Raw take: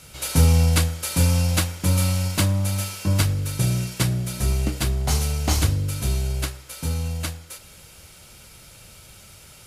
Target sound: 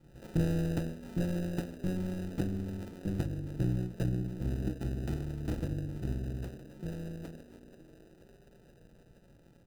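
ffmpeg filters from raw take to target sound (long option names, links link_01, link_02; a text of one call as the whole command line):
ffmpeg -i in.wav -filter_complex "[0:a]lowpass=frequency=1800:width=0.5412,lowpass=frequency=1800:width=1.3066,aecho=1:1:5.9:0.84,asplit=7[link_01][link_02][link_03][link_04][link_05][link_06][link_07];[link_02]adelay=480,afreqshift=78,volume=-17.5dB[link_08];[link_03]adelay=960,afreqshift=156,volume=-21.5dB[link_09];[link_04]adelay=1440,afreqshift=234,volume=-25.5dB[link_10];[link_05]adelay=1920,afreqshift=312,volume=-29.5dB[link_11];[link_06]adelay=2400,afreqshift=390,volume=-33.6dB[link_12];[link_07]adelay=2880,afreqshift=468,volume=-37.6dB[link_13];[link_01][link_08][link_09][link_10][link_11][link_12][link_13]amix=inputs=7:normalize=0,tremolo=f=180:d=0.824,acrossover=split=510[link_14][link_15];[link_15]acrusher=samples=40:mix=1:aa=0.000001[link_16];[link_14][link_16]amix=inputs=2:normalize=0,volume=-7dB" out.wav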